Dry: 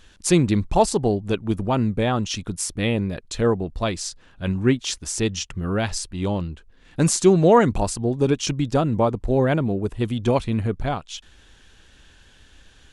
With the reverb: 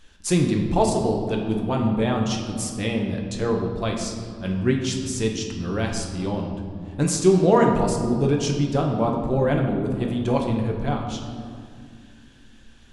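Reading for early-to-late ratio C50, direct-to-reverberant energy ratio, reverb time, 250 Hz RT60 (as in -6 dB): 4.5 dB, 1.0 dB, 2.2 s, 3.6 s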